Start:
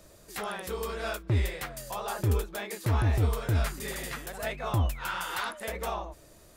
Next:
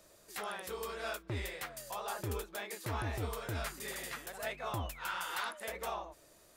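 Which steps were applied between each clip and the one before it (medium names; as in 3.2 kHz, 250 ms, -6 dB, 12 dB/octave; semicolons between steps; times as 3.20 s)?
bass shelf 230 Hz -11.5 dB; trim -4.5 dB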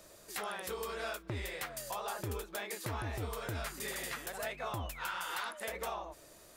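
compression 3:1, threshold -42 dBFS, peak gain reduction 7 dB; trim +5 dB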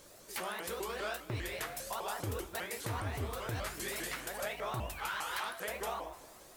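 added noise blue -69 dBFS; two-slope reverb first 0.58 s, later 2.5 s, from -13 dB, DRR 7 dB; vibrato with a chosen wave saw up 5 Hz, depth 250 cents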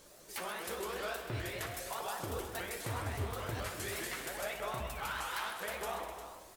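flange 0.42 Hz, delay 4.3 ms, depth 7.9 ms, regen -56%; on a send: multi-tap echo 59/131/254/353 ms -12/-10.5/-11.5/-11 dB; on the sum: trim +2.5 dB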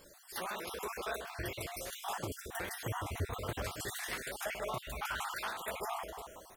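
random holes in the spectrogram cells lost 40%; trim +2 dB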